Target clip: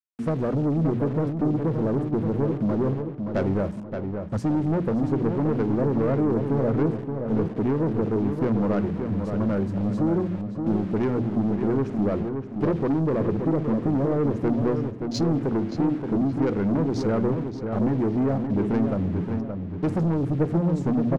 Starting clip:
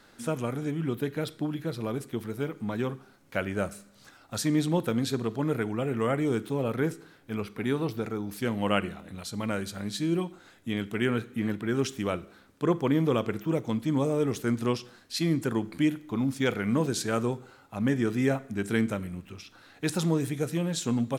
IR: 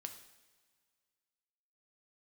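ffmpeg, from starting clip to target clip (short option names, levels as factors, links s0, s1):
-filter_complex "[0:a]afwtdn=0.0141,tiltshelf=f=1300:g=9.5,bandreject=f=60:t=h:w=6,bandreject=f=120:t=h:w=6,bandreject=f=180:t=h:w=6,bandreject=f=240:t=h:w=6,acompressor=threshold=0.0794:ratio=6,asoftclip=type=tanh:threshold=0.0531,aexciter=amount=7.5:drive=3.8:freq=4800,aeval=exprs='val(0)*gte(abs(val(0)),0.00668)':c=same,adynamicsmooth=sensitivity=1:basefreq=4600,asplit=2[s0][s1];[s1]adelay=574,lowpass=f=2400:p=1,volume=0.501,asplit=2[s2][s3];[s3]adelay=574,lowpass=f=2400:p=1,volume=0.41,asplit=2[s4][s5];[s5]adelay=574,lowpass=f=2400:p=1,volume=0.41,asplit=2[s6][s7];[s7]adelay=574,lowpass=f=2400:p=1,volume=0.41,asplit=2[s8][s9];[s9]adelay=574,lowpass=f=2400:p=1,volume=0.41[s10];[s2][s4][s6][s8][s10]amix=inputs=5:normalize=0[s11];[s0][s11]amix=inputs=2:normalize=0,adynamicequalizer=threshold=0.002:dfrequency=2800:dqfactor=0.7:tfrequency=2800:tqfactor=0.7:attack=5:release=100:ratio=0.375:range=2.5:mode=cutabove:tftype=highshelf,volume=2.11"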